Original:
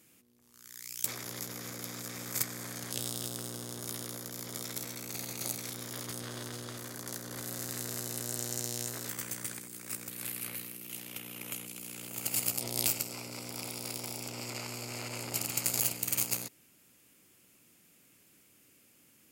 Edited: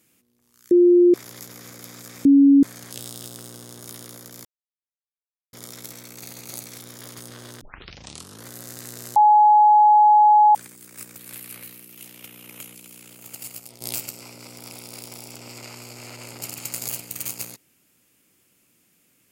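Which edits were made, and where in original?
0.71–1.14 bleep 352 Hz -10 dBFS
2.25–2.63 bleep 279 Hz -9 dBFS
4.45 insert silence 1.08 s
6.53 tape start 0.84 s
8.08–9.47 bleep 843 Hz -10 dBFS
11.68–12.73 fade out, to -11 dB

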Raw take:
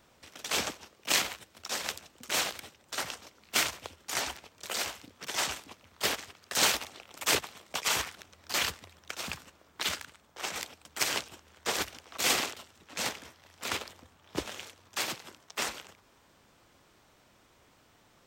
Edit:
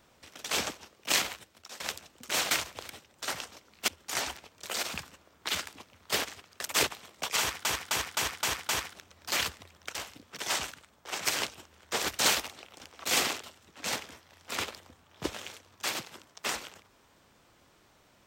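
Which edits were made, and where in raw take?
1.39–1.8 fade out, to -19 dB
3.58–3.88 move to 2.51
4.83–5.59 swap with 9.17–10.02
6.56–7.17 move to 11.93
7.91–8.17 loop, 6 plays
10.56–10.99 cut

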